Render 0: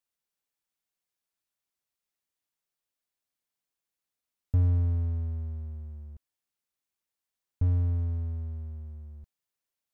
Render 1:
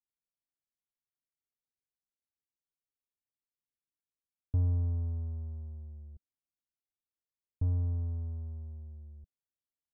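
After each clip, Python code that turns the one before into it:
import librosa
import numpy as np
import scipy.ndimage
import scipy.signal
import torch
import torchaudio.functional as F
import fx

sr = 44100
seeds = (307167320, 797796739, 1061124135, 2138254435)

y = fx.peak_eq(x, sr, hz=190.0, db=-6.5, octaves=0.32)
y = fx.env_lowpass(y, sr, base_hz=320.0, full_db=-25.0)
y = scipy.signal.sosfilt(scipy.signal.butter(4, 1100.0, 'lowpass', fs=sr, output='sos'), y)
y = y * 10.0 ** (-4.5 / 20.0)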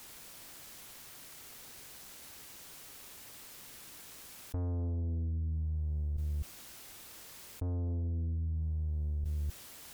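y = fx.tube_stage(x, sr, drive_db=41.0, bias=0.5)
y = y + 10.0 ** (-20.0 / 20.0) * np.pad(y, (int(255 * sr / 1000.0), 0))[:len(y)]
y = fx.env_flatten(y, sr, amount_pct=100)
y = y * 10.0 ** (7.5 / 20.0)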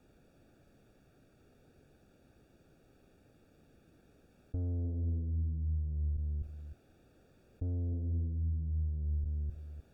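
y = scipy.signal.lfilter(np.full(43, 1.0 / 43), 1.0, x)
y = y + 10.0 ** (-11.5 / 20.0) * np.pad(y, (int(304 * sr / 1000.0), 0))[:len(y)]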